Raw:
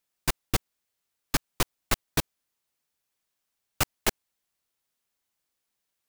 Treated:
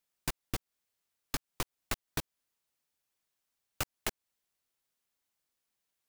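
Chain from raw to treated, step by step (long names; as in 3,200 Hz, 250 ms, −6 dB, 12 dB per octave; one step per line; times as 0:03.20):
downward compressor, threshold −28 dBFS, peak gain reduction 9.5 dB
level −3 dB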